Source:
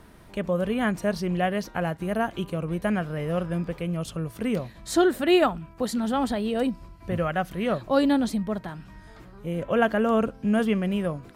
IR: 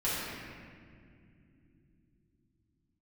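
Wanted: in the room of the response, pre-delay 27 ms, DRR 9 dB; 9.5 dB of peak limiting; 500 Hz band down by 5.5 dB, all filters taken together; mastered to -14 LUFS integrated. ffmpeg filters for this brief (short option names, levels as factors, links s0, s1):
-filter_complex "[0:a]equalizer=f=500:t=o:g=-7.5,alimiter=limit=0.0944:level=0:latency=1,asplit=2[s0][s1];[1:a]atrim=start_sample=2205,adelay=27[s2];[s1][s2]afir=irnorm=-1:irlink=0,volume=0.126[s3];[s0][s3]amix=inputs=2:normalize=0,volume=6.31"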